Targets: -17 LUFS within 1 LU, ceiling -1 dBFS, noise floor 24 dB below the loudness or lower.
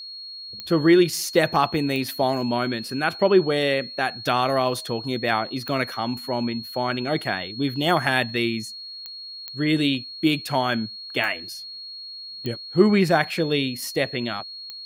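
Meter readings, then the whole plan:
clicks found 8; steady tone 4.3 kHz; tone level -35 dBFS; loudness -23.0 LUFS; peak level -3.5 dBFS; loudness target -17.0 LUFS
-> de-click; band-stop 4.3 kHz, Q 30; trim +6 dB; peak limiter -1 dBFS

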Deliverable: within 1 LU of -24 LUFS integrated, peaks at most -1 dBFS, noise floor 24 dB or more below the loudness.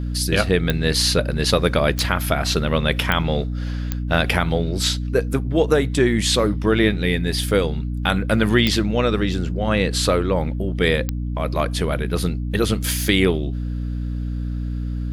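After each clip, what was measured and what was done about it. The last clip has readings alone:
clicks found 6; hum 60 Hz; highest harmonic 300 Hz; hum level -22 dBFS; loudness -20.5 LUFS; peak level -2.5 dBFS; loudness target -24.0 LUFS
-> de-click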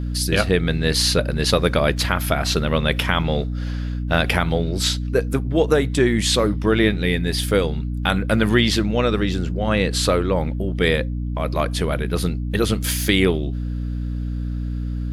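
clicks found 0; hum 60 Hz; highest harmonic 300 Hz; hum level -22 dBFS
-> de-hum 60 Hz, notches 5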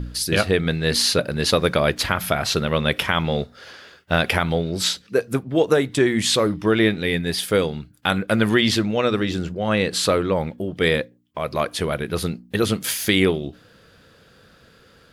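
hum not found; loudness -21.0 LUFS; peak level -3.5 dBFS; loudness target -24.0 LUFS
-> trim -3 dB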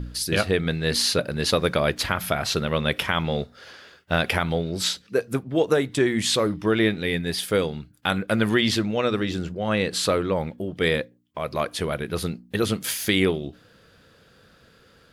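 loudness -24.0 LUFS; peak level -6.5 dBFS; noise floor -56 dBFS

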